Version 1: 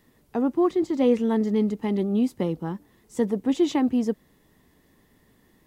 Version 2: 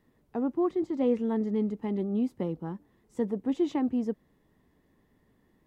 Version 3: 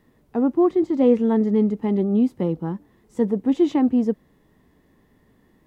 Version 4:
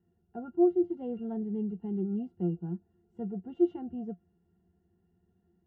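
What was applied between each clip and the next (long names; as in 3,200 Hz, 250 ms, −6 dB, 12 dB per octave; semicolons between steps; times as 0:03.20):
high-shelf EQ 2,700 Hz −11 dB; level −5.5 dB
harmonic and percussive parts rebalanced harmonic +4 dB; level +5.5 dB
resonances in every octave F, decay 0.1 s; level −4.5 dB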